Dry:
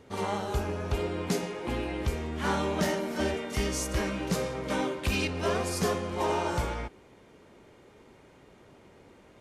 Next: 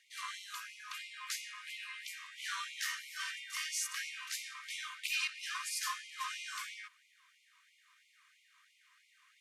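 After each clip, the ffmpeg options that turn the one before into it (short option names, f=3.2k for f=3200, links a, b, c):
-af "bandreject=f=1.4k:w=9.4,afftfilt=real='re*gte(b*sr/1024,950*pow(2000/950,0.5+0.5*sin(2*PI*3*pts/sr)))':imag='im*gte(b*sr/1024,950*pow(2000/950,0.5+0.5*sin(2*PI*3*pts/sr)))':win_size=1024:overlap=0.75,volume=-2dB"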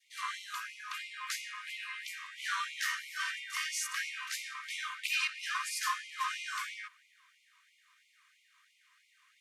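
-af "adynamicequalizer=threshold=0.00224:dfrequency=1300:dqfactor=0.73:tfrequency=1300:tqfactor=0.73:attack=5:release=100:ratio=0.375:range=3.5:mode=boostabove:tftype=bell"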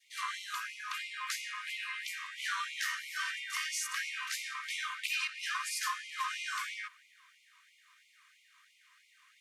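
-af "acompressor=threshold=-38dB:ratio=2,volume=3dB"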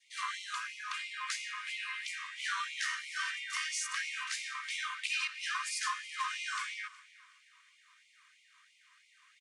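-af "aecho=1:1:370|740|1110:0.0944|0.0312|0.0103,aresample=22050,aresample=44100"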